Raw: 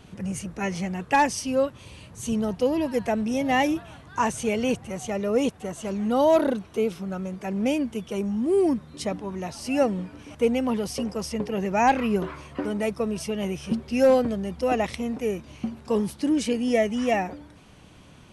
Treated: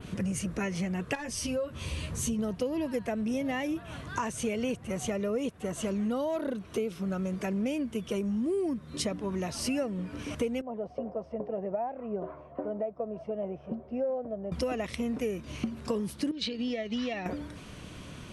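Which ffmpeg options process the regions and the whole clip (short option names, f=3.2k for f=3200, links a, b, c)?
-filter_complex "[0:a]asettb=1/sr,asplit=3[a][b][c];[a]atrim=end=1.154[d];[b]atrim=start=1.15:end=2.39,asetpts=PTS-STARTPTS,afade=t=in:d=0.004:c=qsin,afade=t=out:st=1.236:d=0.004:c=qsin,lowshelf=f=64:g=9.5,acompressor=threshold=-34dB:ratio=2:attack=3.2:release=140:knee=1:detection=peak,asplit=2[e][f];[f]adelay=13,volume=-3dB[g];[e][g]amix=inputs=2:normalize=0,atrim=end_sample=54684[h];[c]atrim=start=2.386[i];[d][h]acrossfade=d=0.004:c1=hsin:c2=qsin[j];[j][i]acrossfade=d=0.004:c1=qsin:c2=hsin,asettb=1/sr,asplit=3[k][l][m];[k]atrim=end=10.614[n];[l]atrim=start=10.61:end=14.52,asetpts=PTS-STARTPTS,afade=t=in:d=0.004:c=qsin,afade=t=out:st=3.906:d=0.004:c=qsin,bandpass=f=680:t=q:w=4.7,aemphasis=mode=reproduction:type=riaa[o];[m]atrim=start=14.516[p];[n][o]acrossfade=d=0.004:c1=hsin:c2=qsin[q];[q][p]acrossfade=d=0.004:c1=qsin:c2=hsin,asettb=1/sr,asplit=3[r][s][t];[r]atrim=end=16.314[u];[s]atrim=start=16.31:end=17.26,asetpts=PTS-STARTPTS,afade=t=in:d=0.004:c=qsin,afade=t=out:st=0.946:d=0.004:c=qsin,acompressor=threshold=-26dB:ratio=12:attack=3.2:release=140:knee=1:detection=peak,lowpass=f=4.1k:t=q:w=7.3,agate=range=-33dB:threshold=-25dB:ratio=3:release=100:detection=peak[v];[t]atrim=start=17.256[w];[u][v]acrossfade=d=0.004:c1=hsin:c2=qsin[x];[x][w]acrossfade=d=0.004:c1=qsin:c2=hsin,adynamicequalizer=threshold=0.00355:dfrequency=5600:dqfactor=0.82:tfrequency=5600:tqfactor=0.82:attack=5:release=100:ratio=0.375:range=2:mode=cutabove:tftype=bell,acompressor=threshold=-35dB:ratio=6,equalizer=f=820:t=o:w=0.26:g=-8.5,volume=6dB"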